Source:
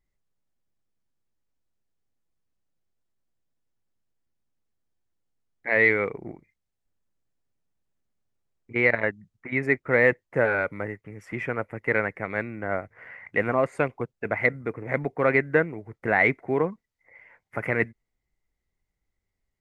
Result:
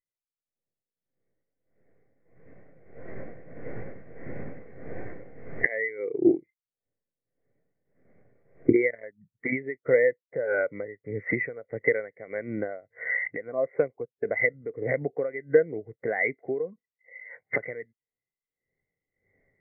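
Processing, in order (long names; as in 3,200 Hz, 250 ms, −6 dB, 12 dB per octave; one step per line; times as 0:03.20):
compressor on every frequency bin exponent 0.6
camcorder AGC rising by 9.3 dB per second
0:05.98–0:08.82: dynamic equaliser 340 Hz, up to +7 dB, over −42 dBFS, Q 3.6
downward compressor 10 to 1, threshold −22 dBFS, peak gain reduction 13 dB
amplitude tremolo 1.6 Hz, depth 46%
every bin expanded away from the loudest bin 2.5 to 1
level +2.5 dB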